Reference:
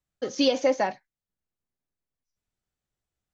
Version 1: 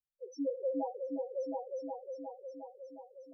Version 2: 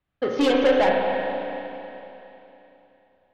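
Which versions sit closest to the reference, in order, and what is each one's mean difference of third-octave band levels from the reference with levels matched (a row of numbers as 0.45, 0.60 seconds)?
2, 1; 7.0, 15.0 decibels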